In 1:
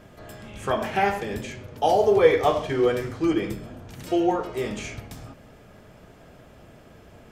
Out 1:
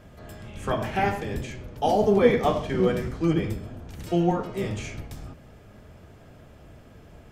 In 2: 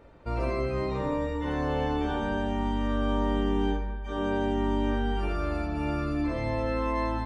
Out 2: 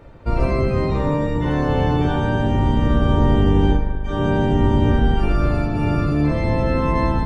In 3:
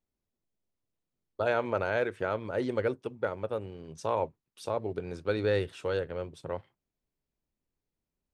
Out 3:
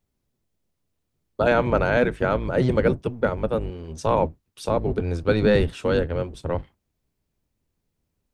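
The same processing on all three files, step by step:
octave divider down 1 oct, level +3 dB; peak normalisation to -6 dBFS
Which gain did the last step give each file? -2.5 dB, +7.5 dB, +8.5 dB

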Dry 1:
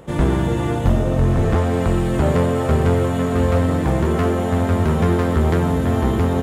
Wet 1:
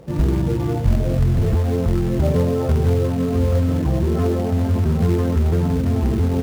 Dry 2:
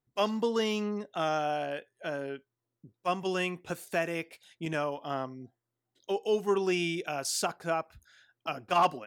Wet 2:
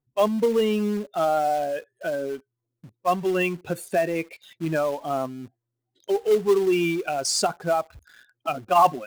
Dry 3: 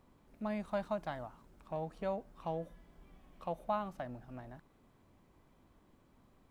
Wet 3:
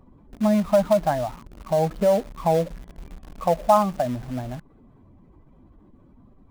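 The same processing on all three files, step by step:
spectral contrast enhancement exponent 1.7; in parallel at -5 dB: companded quantiser 4-bit; on the sum: peak normalisation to -6 dBFS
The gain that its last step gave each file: -4.5 dB, +4.0 dB, +14.5 dB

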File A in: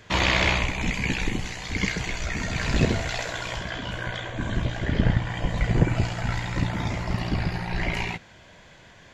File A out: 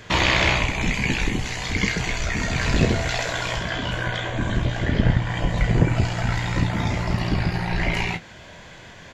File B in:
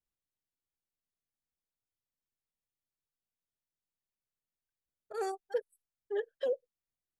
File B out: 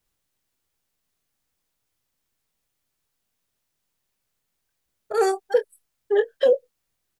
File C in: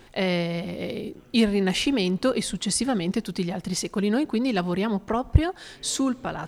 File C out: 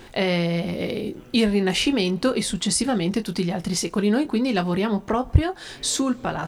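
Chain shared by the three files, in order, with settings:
in parallel at +1 dB: compression, threshold -32 dBFS; on the sum: doubling 24 ms -10 dB; normalise loudness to -23 LUFS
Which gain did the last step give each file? +0.5 dB, +9.0 dB, -0.5 dB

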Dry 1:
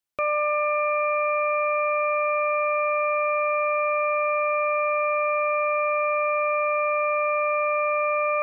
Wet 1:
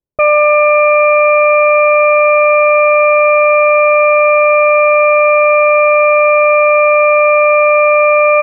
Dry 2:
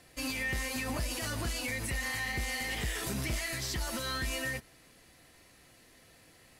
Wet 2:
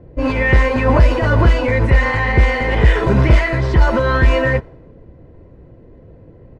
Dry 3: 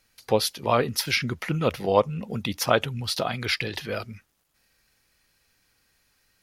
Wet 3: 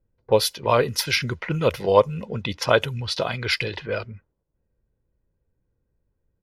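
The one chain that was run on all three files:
level-controlled noise filter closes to 350 Hz, open at -22 dBFS; comb 2 ms, depth 40%; peak normalisation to -2 dBFS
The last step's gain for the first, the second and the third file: +14.5 dB, +23.0 dB, +2.0 dB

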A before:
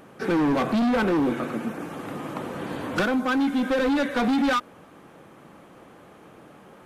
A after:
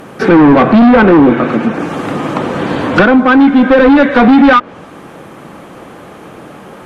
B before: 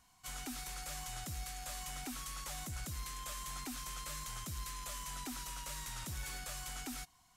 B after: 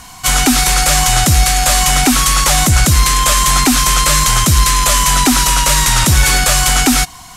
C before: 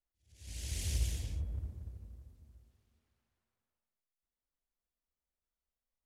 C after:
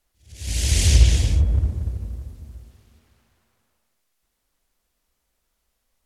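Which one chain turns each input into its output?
low-pass that closes with the level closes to 2.5 kHz, closed at -22.5 dBFS; peak normalisation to -2 dBFS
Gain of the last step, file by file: +16.5 dB, +33.0 dB, +20.0 dB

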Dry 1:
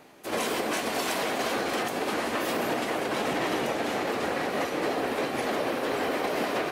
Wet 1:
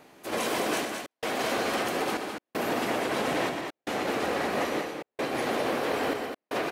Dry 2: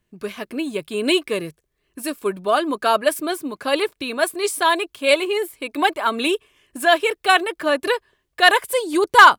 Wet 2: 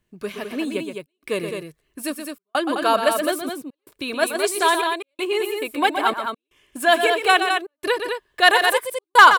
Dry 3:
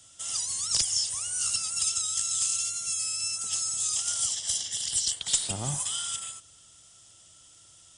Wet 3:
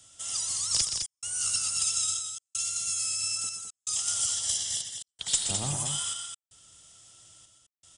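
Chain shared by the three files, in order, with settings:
trance gate "xxxxxxxxx....x" 159 bpm -60 dB; loudspeakers at several distances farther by 42 m -8 dB, 72 m -6 dB; trim -1 dB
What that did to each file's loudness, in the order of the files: -1.0 LU, -1.0 LU, -1.0 LU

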